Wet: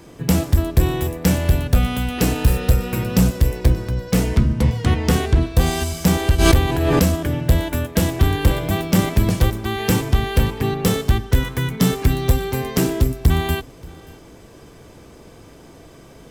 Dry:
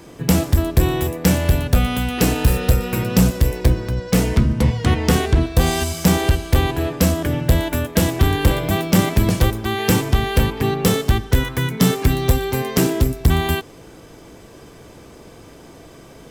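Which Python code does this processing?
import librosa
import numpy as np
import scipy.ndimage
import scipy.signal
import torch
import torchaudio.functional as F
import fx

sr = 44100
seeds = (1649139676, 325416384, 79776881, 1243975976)

y = fx.low_shelf(x, sr, hz=140.0, db=3.5)
y = y + 10.0 ** (-23.5 / 20.0) * np.pad(y, (int(580 * sr / 1000.0), 0))[:len(y)]
y = fx.pre_swell(y, sr, db_per_s=24.0, at=(6.38, 7.14), fade=0.02)
y = y * 10.0 ** (-2.5 / 20.0)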